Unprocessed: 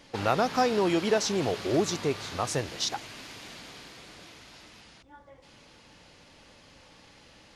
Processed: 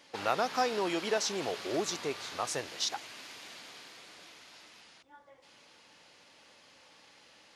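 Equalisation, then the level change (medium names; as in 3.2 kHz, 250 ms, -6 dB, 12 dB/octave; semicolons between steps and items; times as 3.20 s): high-pass 550 Hz 6 dB/octave; -2.5 dB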